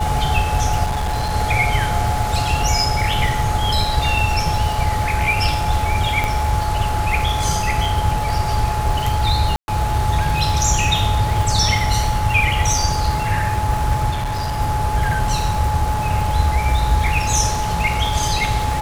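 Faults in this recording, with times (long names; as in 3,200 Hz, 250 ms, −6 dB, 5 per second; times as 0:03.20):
surface crackle 310 per second −26 dBFS
whistle 850 Hz −22 dBFS
0:00.85–0:01.35: clipping −17.5 dBFS
0:06.24: click
0:09.56–0:09.68: drop-out 121 ms
0:14.10–0:14.60: clipping −19 dBFS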